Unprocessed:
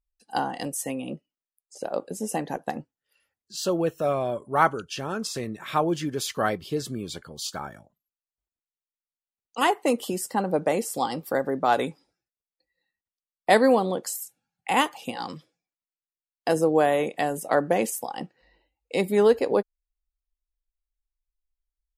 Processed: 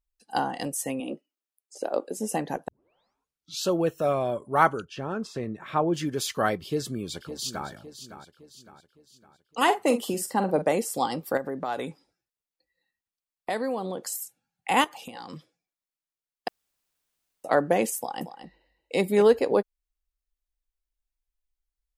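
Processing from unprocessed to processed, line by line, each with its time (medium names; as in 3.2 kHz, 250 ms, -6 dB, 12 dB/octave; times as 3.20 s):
1.00–2.17 s: resonant low shelf 200 Hz -12.5 dB, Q 1.5
2.68 s: tape start 1.00 s
4.85–5.94 s: low-pass 1.4 kHz 6 dB/octave
6.64–7.68 s: echo throw 560 ms, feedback 45%, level -11.5 dB
9.63–10.62 s: doubling 46 ms -10.5 dB
11.37–14.12 s: compression 2.5:1, threshold -30 dBFS
14.84–15.33 s: compression, threshold -36 dBFS
16.48–17.44 s: room tone
17.98–19.22 s: delay 231 ms -11 dB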